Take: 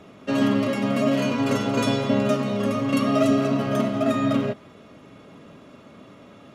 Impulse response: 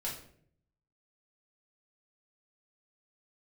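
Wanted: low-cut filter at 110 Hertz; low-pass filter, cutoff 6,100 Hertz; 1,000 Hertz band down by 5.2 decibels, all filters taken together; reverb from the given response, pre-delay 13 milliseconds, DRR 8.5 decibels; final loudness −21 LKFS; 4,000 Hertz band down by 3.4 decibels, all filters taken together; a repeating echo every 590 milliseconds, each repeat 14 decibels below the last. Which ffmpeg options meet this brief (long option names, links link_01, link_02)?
-filter_complex "[0:a]highpass=110,lowpass=6100,equalizer=frequency=1000:width_type=o:gain=-7,equalizer=frequency=4000:width_type=o:gain=-3.5,aecho=1:1:590|1180:0.2|0.0399,asplit=2[link_01][link_02];[1:a]atrim=start_sample=2205,adelay=13[link_03];[link_02][link_03]afir=irnorm=-1:irlink=0,volume=-10.5dB[link_04];[link_01][link_04]amix=inputs=2:normalize=0,volume=3.5dB"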